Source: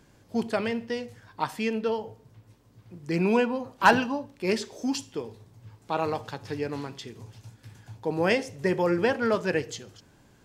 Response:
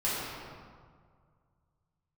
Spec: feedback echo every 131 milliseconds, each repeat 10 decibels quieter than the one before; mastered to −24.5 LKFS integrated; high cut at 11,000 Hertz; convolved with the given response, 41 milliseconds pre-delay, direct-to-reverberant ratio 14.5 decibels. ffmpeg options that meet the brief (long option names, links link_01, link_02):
-filter_complex "[0:a]lowpass=11000,aecho=1:1:131|262|393|524:0.316|0.101|0.0324|0.0104,asplit=2[link_01][link_02];[1:a]atrim=start_sample=2205,adelay=41[link_03];[link_02][link_03]afir=irnorm=-1:irlink=0,volume=-24dB[link_04];[link_01][link_04]amix=inputs=2:normalize=0,volume=3dB"